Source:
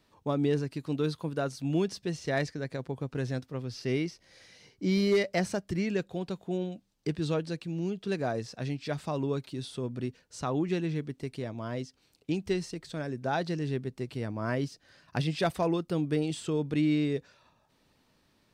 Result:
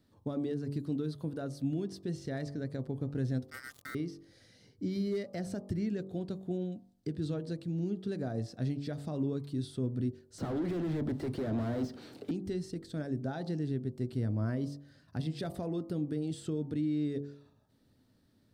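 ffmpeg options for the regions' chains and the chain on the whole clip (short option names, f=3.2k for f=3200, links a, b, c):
-filter_complex "[0:a]asettb=1/sr,asplit=3[a][b][c];[a]atrim=end=3.504[d];[b]atrim=start=3.5:end=3.95,asetpts=PTS-STARTPTS,afade=t=in:d=0.004:c=qsin,afade=t=out:st=0.446:d=0.004:c=qsin,aeval=exprs='val(0)*sin(2*PI*1700*n/s)':c=same,acrusher=bits=5:mix=0:aa=0.5[e];[c]atrim=start=3.946[f];[d][e]acrossfade=d=0.004:c1=hsin:c2=qsin[g];[g][f]acrossfade=d=0.004:c1=qsin:c2=hsin,asettb=1/sr,asplit=3[h][i][j];[h]atrim=end=10.384[k];[i]atrim=start=10.38:end=12.31,asetpts=PTS-STARTPTS,afade=t=in:d=0.004:c=qsin,afade=t=out:st=1.926:d=0.004:c=qsin,highpass=110,acrossover=split=200|1200[l][m][n];[l]acompressor=threshold=-45dB:ratio=4[o];[m]acompressor=threshold=-42dB:ratio=4[p];[n]acompressor=threshold=-53dB:ratio=4[q];[o][p][q]amix=inputs=3:normalize=0,asplit=2[r][s];[s]highpass=f=720:p=1,volume=40dB,asoftclip=type=tanh:threshold=-24.5dB[t];[r][t]amix=inputs=2:normalize=0,lowpass=f=1k:p=1,volume=-6dB[u];[j]atrim=start=12.306[v];[k][u]acrossfade=d=0.004:c1=hsin:c2=qsin[w];[w][v]acrossfade=d=0.004:c1=qsin:c2=hsin,bandreject=f=47.53:t=h:w=4,bandreject=f=95.06:t=h:w=4,bandreject=f=142.59:t=h:w=4,bandreject=f=190.12:t=h:w=4,bandreject=f=237.65:t=h:w=4,bandreject=f=285.18:t=h:w=4,bandreject=f=332.71:t=h:w=4,bandreject=f=380.24:t=h:w=4,bandreject=f=427.77:t=h:w=4,bandreject=f=475.3:t=h:w=4,bandreject=f=522.83:t=h:w=4,bandreject=f=570.36:t=h:w=4,bandreject=f=617.89:t=h:w=4,bandreject=f=665.42:t=h:w=4,bandreject=f=712.95:t=h:w=4,bandreject=f=760.48:t=h:w=4,bandreject=f=808.01:t=h:w=4,bandreject=f=855.54:t=h:w=4,bandreject=f=903.07:t=h:w=4,bandreject=f=950.6:t=h:w=4,bandreject=f=998.13:t=h:w=4,bandreject=f=1.04566k:t=h:w=4,bandreject=f=1.09319k:t=h:w=4,bandreject=f=1.14072k:t=h:w=4,bandreject=f=1.18825k:t=h:w=4,bandreject=f=1.23578k:t=h:w=4,alimiter=level_in=2dB:limit=-24dB:level=0:latency=1:release=151,volume=-2dB,equalizer=f=100:t=o:w=0.67:g=11,equalizer=f=250:t=o:w=0.67:g=7,equalizer=f=1k:t=o:w=0.67:g=-8,equalizer=f=2.5k:t=o:w=0.67:g=-10,equalizer=f=6.3k:t=o:w=0.67:g=-5,volume=-3dB"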